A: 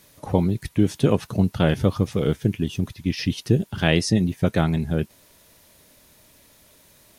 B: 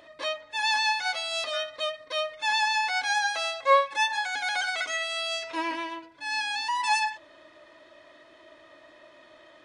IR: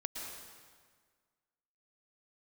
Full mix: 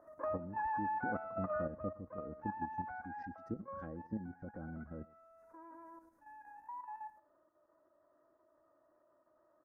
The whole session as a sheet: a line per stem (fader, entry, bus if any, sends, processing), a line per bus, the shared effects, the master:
-20.0 dB, 0.00 s, no send, echo send -22 dB, EQ curve 1700 Hz 0 dB, 3100 Hz -29 dB, 6000 Hz -12 dB; treble ducked by the level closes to 600 Hz, closed at -16.5 dBFS; comb 3.7 ms, depth 68%
1.57 s -0.5 dB -> 1.87 s -9.5 dB -> 3.04 s -9.5 dB -> 3.66 s -21.5 dB -> 5.16 s -21.5 dB -> 5.72 s -15 dB, 0.00 s, no send, echo send -15 dB, elliptic low-pass 1400 Hz, stop band 60 dB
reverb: off
echo: echo 0.113 s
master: level quantiser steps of 9 dB

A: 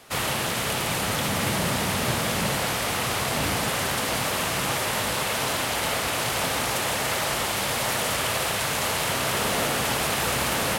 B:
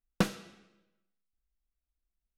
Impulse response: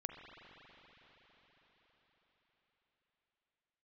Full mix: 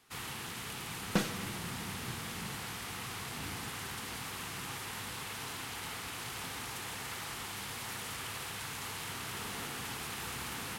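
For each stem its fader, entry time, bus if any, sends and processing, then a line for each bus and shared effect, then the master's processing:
-17.5 dB, 0.00 s, send -5 dB, bell 590 Hz -14.5 dB 0.42 oct
+1.0 dB, 0.95 s, send -5.5 dB, limiter -21 dBFS, peak gain reduction 7.5 dB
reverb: on, RT60 5.3 s, pre-delay 40 ms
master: dry

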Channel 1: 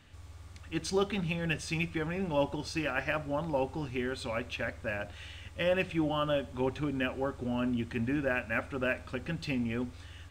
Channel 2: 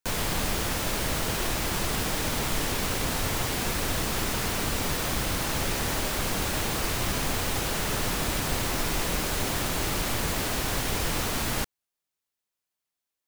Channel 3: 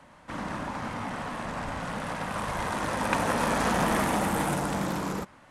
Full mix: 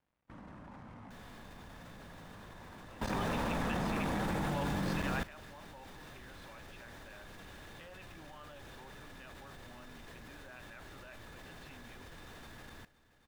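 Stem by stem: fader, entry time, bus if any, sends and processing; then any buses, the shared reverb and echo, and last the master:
-4.5 dB, 2.20 s, no send, no echo send, resonant low shelf 590 Hz -8.5 dB, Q 1.5
-11.5 dB, 1.05 s, no send, echo send -16 dB, small resonant body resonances 1700/3600 Hz, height 11 dB, ringing for 30 ms
-12.0 dB, 0.00 s, no send, echo send -16.5 dB, crossover distortion -50.5 dBFS; AGC gain up to 3.5 dB; low shelf 260 Hz +9.5 dB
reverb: off
echo: feedback echo 0.262 s, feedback 56%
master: transient shaper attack -4 dB, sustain +6 dB; high shelf 4600 Hz -11 dB; level quantiser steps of 17 dB

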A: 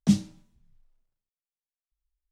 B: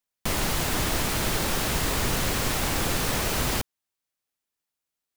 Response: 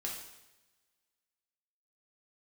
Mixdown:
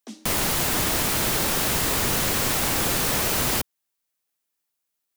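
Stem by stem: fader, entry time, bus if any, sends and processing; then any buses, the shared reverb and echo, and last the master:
-4.5 dB, 0.00 s, no send, Chebyshev high-pass 220 Hz, order 8; compressor, threshold -30 dBFS, peak gain reduction 6.5 dB
+2.0 dB, 0.00 s, no send, high shelf 8600 Hz +6.5 dB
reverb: off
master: low shelf 68 Hz -9.5 dB

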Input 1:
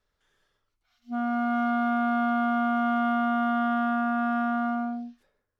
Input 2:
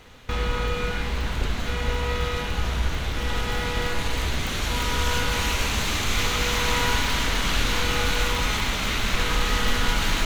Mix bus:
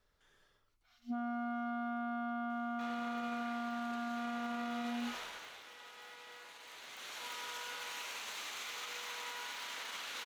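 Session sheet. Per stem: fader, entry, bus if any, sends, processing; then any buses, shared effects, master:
+1.5 dB, 0.00 s, no send, compressor 2:1, threshold -35 dBFS, peak gain reduction 7.5 dB
5.16 s -10 dB -> 5.78 s -22.5 dB -> 6.64 s -22.5 dB -> 7.27 s -14 dB, 2.50 s, no send, HPF 630 Hz 12 dB/oct; limiter -20.5 dBFS, peak gain reduction 7.5 dB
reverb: off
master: limiter -31 dBFS, peak gain reduction 10 dB

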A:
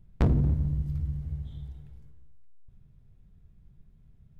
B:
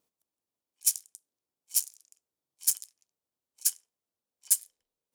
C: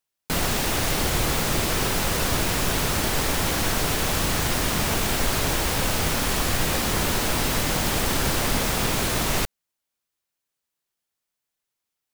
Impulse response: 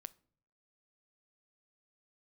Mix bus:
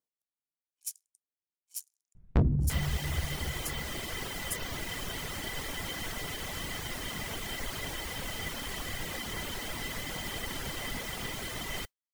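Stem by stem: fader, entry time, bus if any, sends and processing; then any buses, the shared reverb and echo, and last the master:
-1.0 dB, 2.15 s, no send, high shelf 5300 Hz -11 dB
-13.5 dB, 0.00 s, no send, dry
-13.0 dB, 2.40 s, no send, small resonant body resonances 2000/3100 Hz, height 16 dB, ringing for 50 ms; modulation noise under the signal 19 dB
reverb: off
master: reverb removal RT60 0.75 s

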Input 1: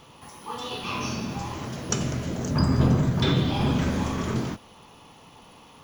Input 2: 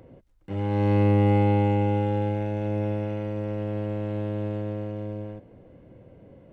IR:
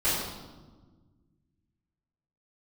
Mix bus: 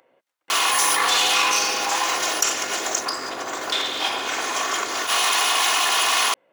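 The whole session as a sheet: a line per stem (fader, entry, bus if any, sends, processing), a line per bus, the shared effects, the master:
+2.0 dB, 0.50 s, no send, minimum comb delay 2.8 ms; bell 7100 Hz +4 dB 0.58 oct; fast leveller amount 100%
+2.0 dB, 0.00 s, no send, dry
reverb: off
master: HPF 960 Hz 12 dB/oct

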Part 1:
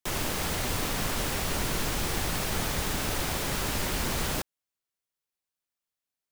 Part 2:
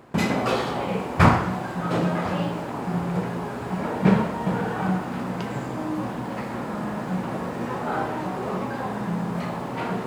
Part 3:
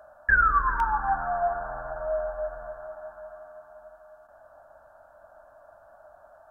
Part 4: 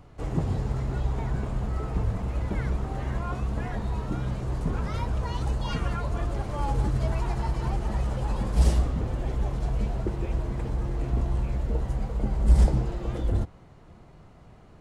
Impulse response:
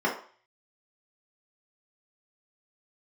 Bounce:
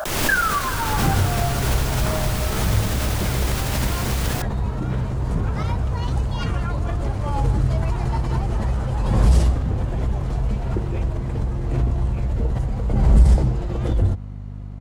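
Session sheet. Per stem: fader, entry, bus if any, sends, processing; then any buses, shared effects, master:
+1.5 dB, 0.00 s, no send, dry
-14.5 dB, 0.85 s, no send, dry
-4.0 dB, 0.00 s, no send, high shelf 2200 Hz +12 dB; short-mantissa float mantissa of 2-bit
+2.0 dB, 0.70 s, no send, hum 50 Hz, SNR 13 dB; bell 97 Hz +6.5 dB 0.88 oct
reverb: off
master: backwards sustainer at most 36 dB/s

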